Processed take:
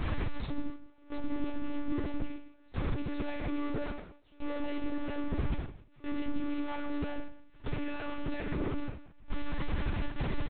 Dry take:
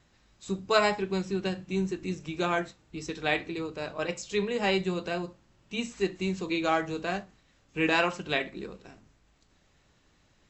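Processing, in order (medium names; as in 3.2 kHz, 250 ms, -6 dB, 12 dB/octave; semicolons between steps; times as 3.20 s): one-bit comparator; bass shelf 86 Hz +2.5 dB; tremolo 0.61 Hz, depth 91%; gate with hold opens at -39 dBFS; peak limiter -41 dBFS, peak gain reduction 37 dB; tilt EQ -2.5 dB/octave; delay 162 ms -14 dB; on a send at -1.5 dB: reverberation, pre-delay 3 ms; on the sum: monotone LPC vocoder at 8 kHz 290 Hz; trim +3 dB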